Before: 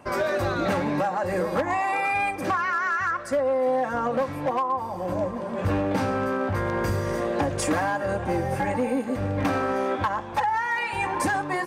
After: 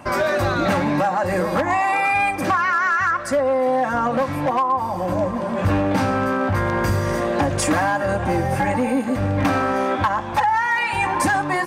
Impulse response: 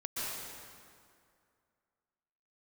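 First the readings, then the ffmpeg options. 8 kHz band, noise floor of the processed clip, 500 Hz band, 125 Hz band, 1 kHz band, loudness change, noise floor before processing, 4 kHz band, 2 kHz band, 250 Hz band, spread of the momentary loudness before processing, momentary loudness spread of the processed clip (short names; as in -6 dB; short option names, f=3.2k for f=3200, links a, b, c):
+6.5 dB, -26 dBFS, +4.0 dB, +6.5 dB, +6.0 dB, +5.5 dB, -33 dBFS, +6.5 dB, +6.0 dB, +5.5 dB, 3 LU, 3 LU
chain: -filter_complex "[0:a]equalizer=f=440:t=o:w=0.42:g=-7.5,asplit=2[a][b];[b]alimiter=level_in=1.5dB:limit=-24dB:level=0:latency=1:release=128,volume=-1.5dB,volume=0dB[c];[a][c]amix=inputs=2:normalize=0,volume=3dB"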